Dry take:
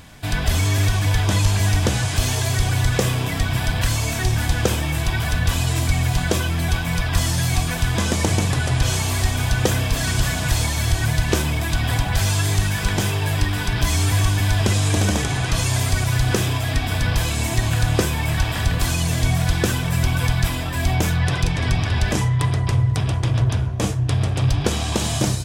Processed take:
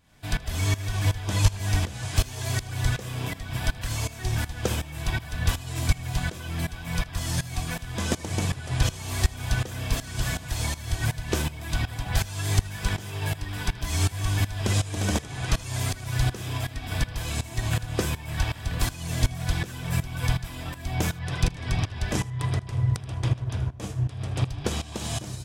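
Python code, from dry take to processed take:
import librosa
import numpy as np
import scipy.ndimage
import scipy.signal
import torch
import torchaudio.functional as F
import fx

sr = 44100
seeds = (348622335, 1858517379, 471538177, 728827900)

y = fx.tremolo_shape(x, sr, shape='saw_up', hz=2.7, depth_pct=85)
y = y + 10.0 ** (-17.5 / 20.0) * np.pad(y, (int(79 * sr / 1000.0), 0))[:len(y)]
y = fx.upward_expand(y, sr, threshold_db=-29.0, expansion=1.5)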